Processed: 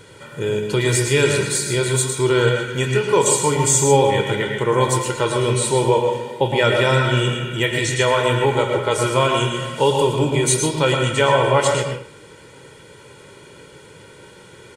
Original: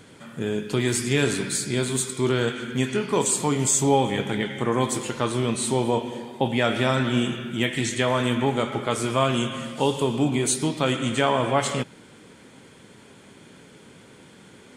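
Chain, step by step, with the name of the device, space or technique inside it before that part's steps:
microphone above a desk (comb filter 2.1 ms, depth 74%; convolution reverb RT60 0.45 s, pre-delay 105 ms, DRR 4 dB)
level +3 dB

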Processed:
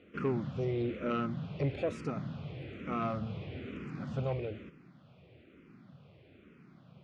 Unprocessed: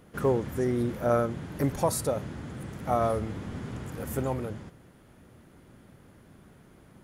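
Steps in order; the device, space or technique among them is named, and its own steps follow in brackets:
barber-pole phaser into a guitar amplifier (frequency shifter mixed with the dry sound −1.1 Hz; soft clipping −23.5 dBFS, distortion −18 dB; loudspeaker in its box 100–4,200 Hz, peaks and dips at 150 Hz +4 dB, 900 Hz −9 dB, 1,700 Hz −6 dB, 2,500 Hz +8 dB)

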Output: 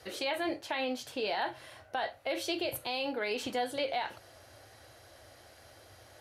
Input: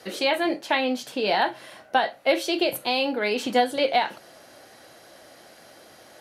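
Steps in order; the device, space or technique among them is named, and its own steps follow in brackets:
car stereo with a boomy subwoofer (low shelf with overshoot 130 Hz +11 dB, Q 3; brickwall limiter −17.5 dBFS, peak gain reduction 9 dB)
level −6.5 dB

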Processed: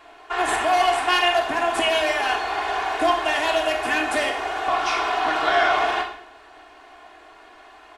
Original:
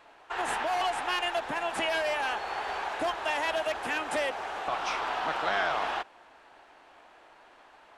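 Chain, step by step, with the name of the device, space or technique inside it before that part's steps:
microphone above a desk (comb filter 2.8 ms, depth 72%; convolution reverb RT60 0.65 s, pre-delay 16 ms, DRR 3.5 dB)
level +5.5 dB

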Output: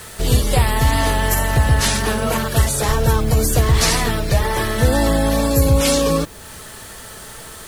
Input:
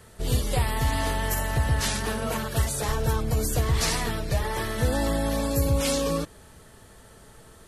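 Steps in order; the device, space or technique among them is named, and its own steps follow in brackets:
noise-reduction cassette on a plain deck (one half of a high-frequency compander encoder only; tape wow and flutter 19 cents; white noise bed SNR 29 dB)
level +9 dB

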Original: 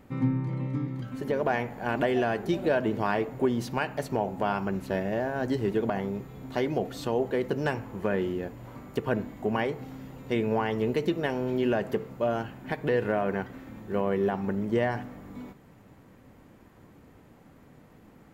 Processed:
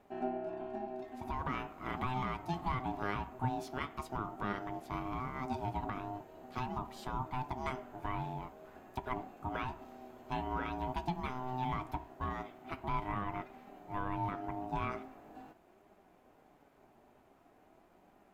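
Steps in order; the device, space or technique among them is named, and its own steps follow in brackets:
alien voice (ring modulation 510 Hz; flanger 0.44 Hz, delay 4.8 ms, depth 3.6 ms, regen +73%)
level −3 dB

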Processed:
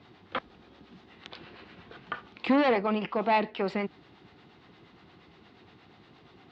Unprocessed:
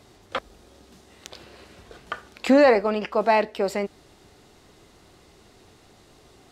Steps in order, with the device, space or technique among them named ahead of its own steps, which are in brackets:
guitar amplifier with harmonic tremolo (two-band tremolo in antiphase 8.5 Hz, depth 50%, crossover 530 Hz; soft clipping −18 dBFS, distortion −12 dB; loudspeaker in its box 110–3,700 Hz, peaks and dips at 170 Hz +3 dB, 420 Hz −4 dB, 590 Hz −8 dB)
0:02.15–0:03.50: parametric band 1,600 Hz −6 dB 0.4 octaves
level +2.5 dB

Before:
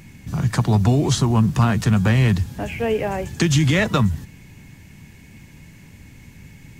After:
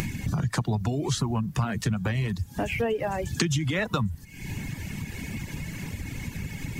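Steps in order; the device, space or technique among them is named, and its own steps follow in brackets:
upward and downward compression (upward compression, threshold −22 dBFS; downward compressor 4 to 1, threshold −25 dBFS, peak gain reduction 11.5 dB)
reverb reduction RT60 1.2 s
level +2 dB

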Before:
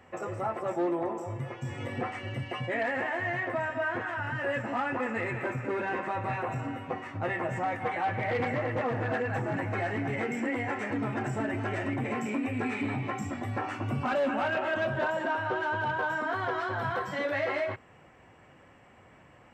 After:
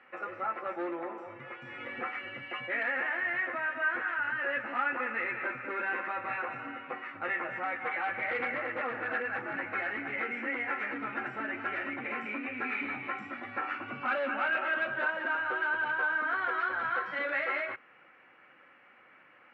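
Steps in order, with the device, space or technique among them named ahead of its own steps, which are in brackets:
phone earpiece (loudspeaker in its box 420–3,500 Hz, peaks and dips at 420 Hz −7 dB, 670 Hz −9 dB, 960 Hz −6 dB, 1,400 Hz +7 dB, 2,300 Hz +4 dB, 3,300 Hz −4 dB)

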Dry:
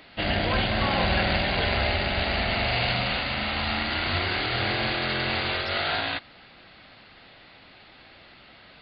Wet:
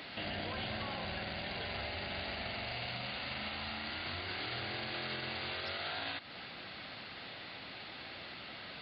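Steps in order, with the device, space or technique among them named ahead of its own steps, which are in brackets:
broadcast voice chain (high-pass filter 80 Hz; de-essing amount 70%; downward compressor 4 to 1, threshold −35 dBFS, peak gain reduction 12.5 dB; parametric band 4,300 Hz +2.5 dB 1.4 octaves; brickwall limiter −33 dBFS, peak gain reduction 10.5 dB)
level +2.5 dB

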